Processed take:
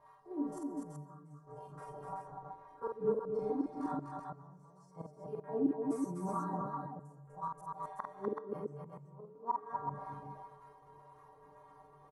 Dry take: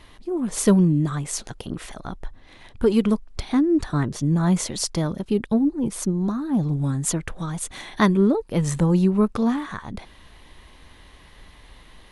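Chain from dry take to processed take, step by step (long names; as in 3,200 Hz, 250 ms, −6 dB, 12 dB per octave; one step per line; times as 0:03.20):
spectrum averaged block by block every 50 ms
drawn EQ curve 180 Hz 0 dB, 270 Hz −17 dB, 410 Hz −6 dB, 660 Hz −7 dB, 980 Hz −1 dB, 2,000 Hz −18 dB, 3,400 Hz −24 dB, 5,700 Hz −8 dB, 13,000 Hz +2 dB
transient designer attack −3 dB, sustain +6 dB
stiff-string resonator 140 Hz, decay 0.29 s, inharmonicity 0.008
gate with flip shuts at −34 dBFS, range −25 dB
LFO wah 1.9 Hz 360–1,200 Hz, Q 2
multi-tap delay 48/248/379 ms −3.5/−3.5/−4 dB
convolution reverb RT60 1.0 s, pre-delay 100 ms, DRR 17.5 dB
level +15 dB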